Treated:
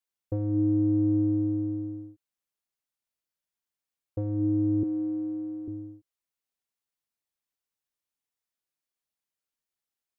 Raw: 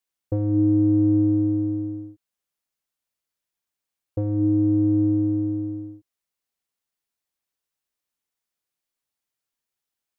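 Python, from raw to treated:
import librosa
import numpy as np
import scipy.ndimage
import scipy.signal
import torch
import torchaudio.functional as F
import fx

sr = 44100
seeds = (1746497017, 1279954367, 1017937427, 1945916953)

y = fx.highpass(x, sr, hz=330.0, slope=12, at=(4.83, 5.68))
y = y * 10.0 ** (-5.5 / 20.0)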